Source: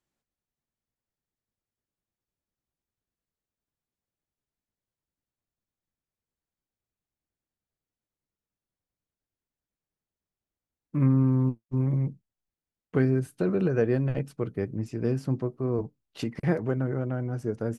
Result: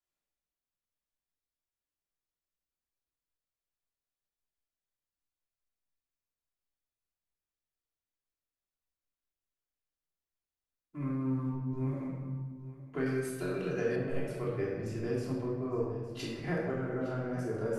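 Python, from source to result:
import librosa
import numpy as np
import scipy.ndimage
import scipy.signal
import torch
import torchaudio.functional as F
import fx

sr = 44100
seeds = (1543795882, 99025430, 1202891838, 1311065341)

y = fx.peak_eq(x, sr, hz=160.0, db=-11.0, octaves=2.7)
y = y + 10.0 ** (-17.0 / 20.0) * np.pad(y, (int(861 * sr / 1000.0), 0))[:len(y)]
y = fx.room_shoebox(y, sr, seeds[0], volume_m3=820.0, walls='mixed', distance_m=3.1)
y = fx.rider(y, sr, range_db=3, speed_s=0.5)
y = fx.high_shelf(y, sr, hz=2700.0, db=11.0, at=(13.06, 13.96))
y = F.gain(torch.from_numpy(y), -8.0).numpy()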